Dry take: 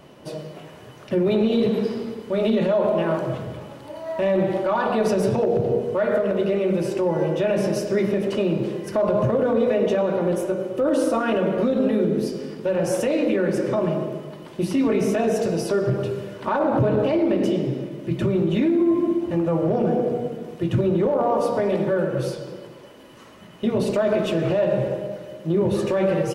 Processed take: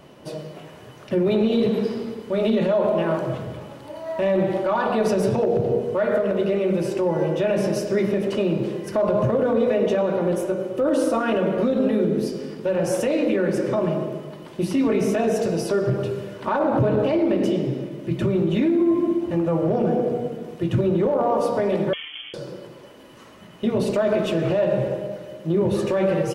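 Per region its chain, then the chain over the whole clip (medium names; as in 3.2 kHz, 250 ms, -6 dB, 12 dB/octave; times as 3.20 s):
21.93–22.34 s: comb filter that takes the minimum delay 0.73 ms + feedback comb 150 Hz, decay 0.56 s, mix 80% + frequency inversion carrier 3.3 kHz
whole clip: none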